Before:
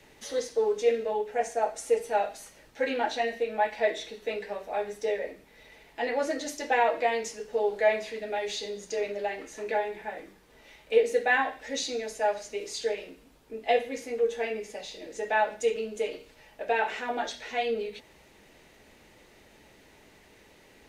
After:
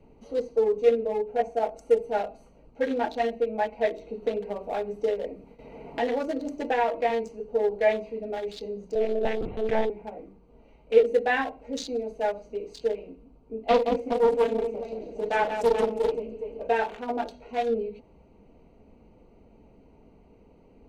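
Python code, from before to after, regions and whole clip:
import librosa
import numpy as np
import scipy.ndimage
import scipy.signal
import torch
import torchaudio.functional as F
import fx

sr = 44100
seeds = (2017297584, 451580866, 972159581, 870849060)

y = fx.chain(x, sr, fx.gate_hold(open_db=-46.0, close_db=-54.0, hold_ms=71.0, range_db=-21, attack_ms=1.4, release_ms=100.0),
    fx.band_squash(depth_pct=70), at=(3.85, 7.1))
y = fx.chain(y, sr, fx.lpc_monotone(seeds[0], pitch_hz=220.0, order=16),
    fx.env_flatten(amount_pct=50), at=(8.95, 9.9))
y = fx.chain(y, sr, fx.echo_multitap(ms=(41, 43, 173, 416, 552, 682), db=(-10.0, -11.0, -6.0, -7.5, -16.5, -20.0)),
    fx.doppler_dist(depth_ms=0.35), at=(13.68, 16.68))
y = fx.wiener(y, sr, points=25)
y = fx.low_shelf(y, sr, hz=270.0, db=7.5)
y = y + 0.3 * np.pad(y, (int(4.3 * sr / 1000.0), 0))[:len(y)]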